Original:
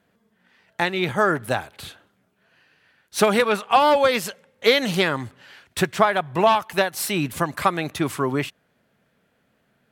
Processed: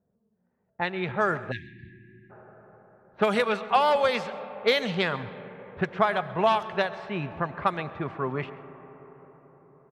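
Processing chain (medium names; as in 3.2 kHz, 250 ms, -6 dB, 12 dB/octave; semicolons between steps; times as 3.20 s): peaking EQ 300 Hz -10.5 dB 0.27 oct; level-controlled noise filter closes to 510 Hz, open at -13.5 dBFS; on a send at -14 dB: reverberation RT60 5.2 s, pre-delay 50 ms; on the sum: level-controlled noise filter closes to 2.2 kHz, open at -17 dBFS; treble shelf 9.6 kHz -9 dB; echo from a far wall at 23 m, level -20 dB; spectral selection erased 1.52–2.30 s, 370–1600 Hz; trim -5 dB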